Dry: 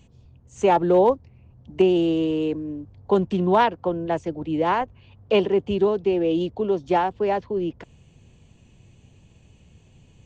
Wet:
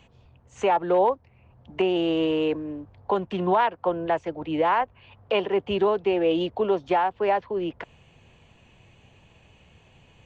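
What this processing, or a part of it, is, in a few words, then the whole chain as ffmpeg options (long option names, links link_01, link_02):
DJ mixer with the lows and highs turned down: -filter_complex "[0:a]acrossover=split=560 3300:gain=0.224 1 0.178[link_01][link_02][link_03];[link_01][link_02][link_03]amix=inputs=3:normalize=0,alimiter=limit=-21.5dB:level=0:latency=1:release=435,volume=8.5dB"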